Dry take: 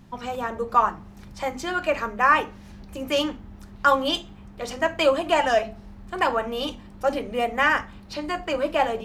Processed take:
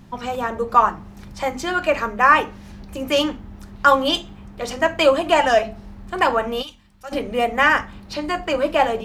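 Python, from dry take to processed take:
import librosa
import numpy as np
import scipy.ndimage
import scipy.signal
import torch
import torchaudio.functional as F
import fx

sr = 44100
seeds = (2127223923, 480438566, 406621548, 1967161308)

y = fx.tone_stack(x, sr, knobs='5-5-5', at=(6.61, 7.11), fade=0.02)
y = F.gain(torch.from_numpy(y), 4.5).numpy()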